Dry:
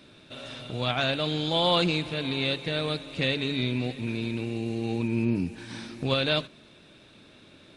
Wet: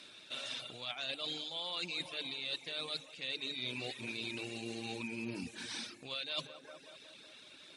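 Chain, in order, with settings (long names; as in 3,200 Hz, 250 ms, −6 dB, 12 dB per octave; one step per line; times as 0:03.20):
Bessel low-pass filter 7,700 Hz, order 2
spectral tilt +4 dB per octave
on a send: tape delay 186 ms, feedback 64%, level −10.5 dB, low-pass 1,400 Hz
on the sum: dynamic equaliser 1,600 Hz, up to −4 dB, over −44 dBFS, Q 2.5
mains-hum notches 50/100/150 Hz
reverb reduction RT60 0.76 s
reversed playback
downward compressor 16 to 1, threshold −33 dBFS, peak gain reduction 16 dB
reversed playback
level −3 dB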